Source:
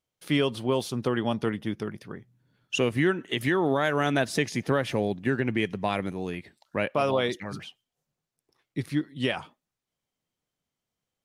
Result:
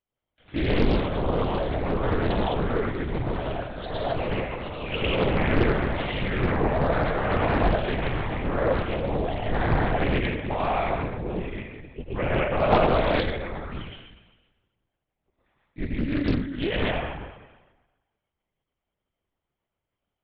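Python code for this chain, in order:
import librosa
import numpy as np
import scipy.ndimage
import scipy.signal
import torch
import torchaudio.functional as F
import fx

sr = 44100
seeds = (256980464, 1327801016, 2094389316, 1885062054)

y = fx.rider(x, sr, range_db=4, speed_s=2.0)
y = fx.stretch_grains(y, sr, factor=1.8, grain_ms=33.0)
y = fx.echo_pitch(y, sr, ms=145, semitones=5, count=3, db_per_echo=-6.0)
y = fx.bandpass_edges(y, sr, low_hz=100.0, high_hz=2800.0)
y = fx.rev_plate(y, sr, seeds[0], rt60_s=1.2, hf_ratio=0.95, predelay_ms=85, drr_db=-4.5)
y = fx.lpc_vocoder(y, sr, seeds[1], excitation='whisper', order=10)
y = fx.doppler_dist(y, sr, depth_ms=0.94)
y = y * librosa.db_to_amplitude(-2.5)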